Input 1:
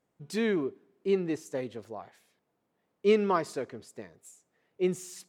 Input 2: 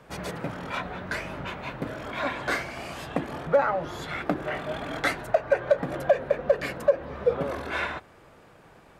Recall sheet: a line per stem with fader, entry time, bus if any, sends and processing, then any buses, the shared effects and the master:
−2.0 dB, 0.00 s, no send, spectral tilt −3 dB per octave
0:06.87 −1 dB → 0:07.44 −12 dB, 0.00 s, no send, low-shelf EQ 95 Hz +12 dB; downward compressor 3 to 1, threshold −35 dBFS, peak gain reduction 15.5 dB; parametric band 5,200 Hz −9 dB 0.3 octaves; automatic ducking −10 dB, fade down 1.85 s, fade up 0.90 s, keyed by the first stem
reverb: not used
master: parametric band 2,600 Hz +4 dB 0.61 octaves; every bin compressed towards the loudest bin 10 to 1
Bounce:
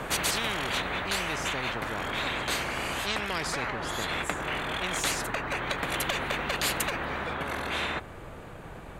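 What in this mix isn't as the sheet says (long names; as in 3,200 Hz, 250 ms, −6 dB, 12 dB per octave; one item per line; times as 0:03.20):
stem 2: missing downward compressor 3 to 1, threshold −35 dBFS, peak gain reduction 15.5 dB
master: missing parametric band 2,600 Hz +4 dB 0.61 octaves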